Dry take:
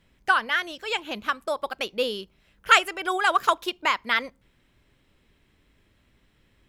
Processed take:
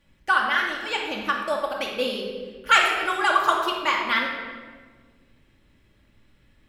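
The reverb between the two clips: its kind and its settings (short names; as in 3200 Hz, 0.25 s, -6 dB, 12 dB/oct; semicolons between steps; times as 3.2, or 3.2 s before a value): shoebox room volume 1600 m³, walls mixed, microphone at 2.4 m; gain -2.5 dB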